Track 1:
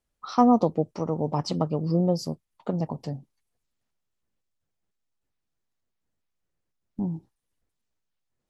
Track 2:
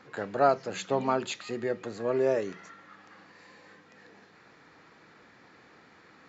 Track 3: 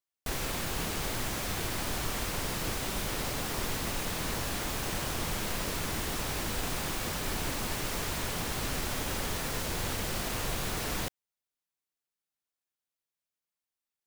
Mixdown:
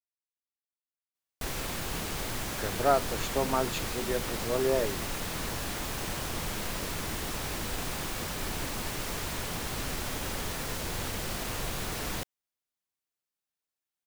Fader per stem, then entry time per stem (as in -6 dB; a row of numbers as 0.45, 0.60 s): off, -1.5 dB, -1.0 dB; off, 2.45 s, 1.15 s